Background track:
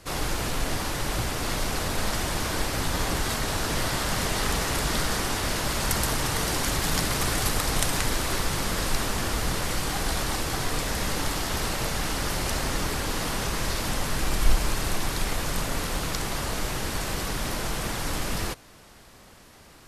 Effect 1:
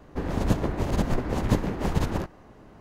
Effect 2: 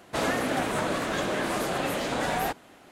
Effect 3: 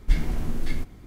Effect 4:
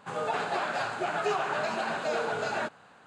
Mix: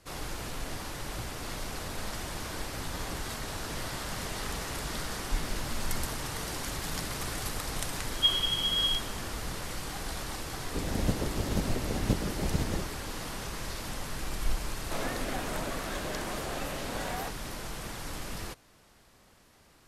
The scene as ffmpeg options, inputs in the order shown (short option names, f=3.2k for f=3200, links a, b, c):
-filter_complex "[3:a]asplit=2[a][b];[0:a]volume=-9.5dB[c];[b]lowpass=f=2.8k:t=q:w=0.5098,lowpass=f=2.8k:t=q:w=0.6013,lowpass=f=2.8k:t=q:w=0.9,lowpass=f=2.8k:t=q:w=2.563,afreqshift=-3300[d];[1:a]equalizer=f=1.3k:w=1.5:g=-11.5[e];[a]atrim=end=1.06,asetpts=PTS-STARTPTS,volume=-10.5dB,afade=t=in:d=0.004:c=hsin,afade=t=out:st=1.056:d=0.004:c=hsin,adelay=5230[f];[d]atrim=end=1.06,asetpts=PTS-STARTPTS,volume=-7.5dB,afade=t=in:d=0.004:c=hsin,afade=t=out:st=1.056:d=0.004:c=hsin,adelay=8130[g];[e]atrim=end=2.8,asetpts=PTS-STARTPTS,volume=-5dB,afade=t=in:d=0.004:c=hsin,afade=t=out:st=2.796:d=0.004:c=hsin,adelay=466578S[h];[2:a]atrim=end=2.91,asetpts=PTS-STARTPTS,volume=-9dB,afade=t=in:d=0.004:c=hsin,afade=t=out:st=2.906:d=0.004:c=hsin,adelay=14770[i];[c][f][g][h][i]amix=inputs=5:normalize=0"